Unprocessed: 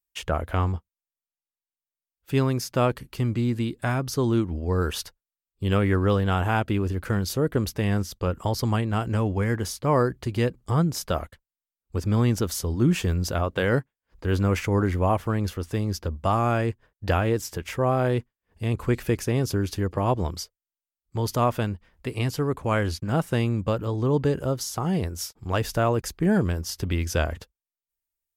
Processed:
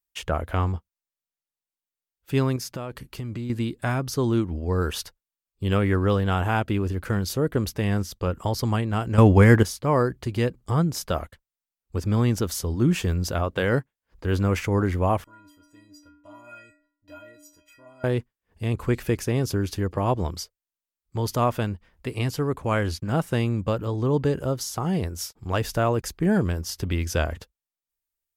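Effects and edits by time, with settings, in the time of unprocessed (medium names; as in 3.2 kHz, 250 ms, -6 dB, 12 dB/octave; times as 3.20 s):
2.56–3.50 s: compression 16:1, threshold -28 dBFS
9.18–9.63 s: gain +10.5 dB
15.24–18.04 s: inharmonic resonator 290 Hz, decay 0.73 s, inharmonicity 0.03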